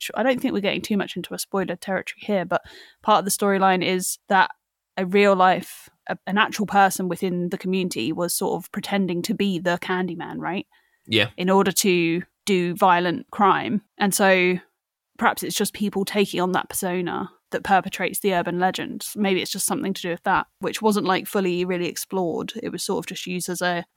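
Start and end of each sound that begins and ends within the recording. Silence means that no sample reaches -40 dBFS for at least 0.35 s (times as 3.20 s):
4.97–10.62 s
11.08–14.61 s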